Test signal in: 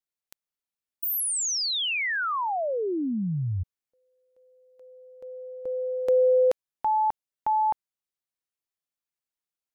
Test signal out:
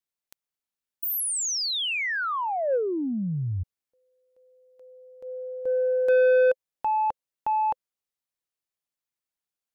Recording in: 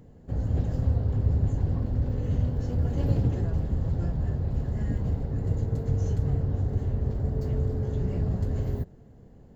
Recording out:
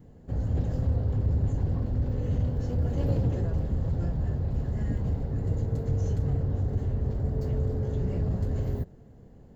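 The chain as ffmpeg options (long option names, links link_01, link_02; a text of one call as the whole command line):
ffmpeg -i in.wav -af "adynamicequalizer=threshold=0.00708:dfrequency=520:dqfactor=4.8:tfrequency=520:tqfactor=4.8:attack=5:release=100:ratio=0.4:range=3.5:mode=boostabove:tftype=bell,asoftclip=type=tanh:threshold=-16.5dB" out.wav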